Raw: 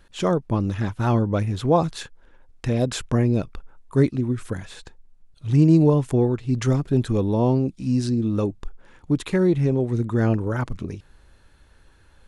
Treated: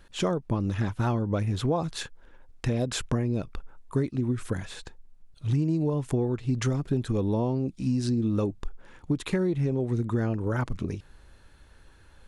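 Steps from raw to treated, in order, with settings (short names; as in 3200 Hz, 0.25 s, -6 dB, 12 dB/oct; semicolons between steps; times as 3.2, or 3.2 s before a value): compressor 10:1, threshold -22 dBFS, peak gain reduction 12 dB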